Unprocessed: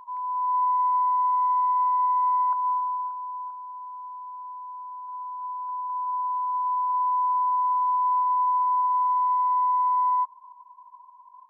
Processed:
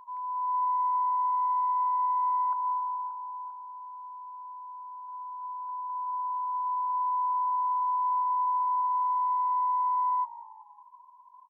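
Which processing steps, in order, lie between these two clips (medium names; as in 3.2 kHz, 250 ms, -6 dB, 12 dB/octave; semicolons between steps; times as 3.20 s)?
frequency-shifting echo 192 ms, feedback 42%, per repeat -54 Hz, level -18 dB; trim -4.5 dB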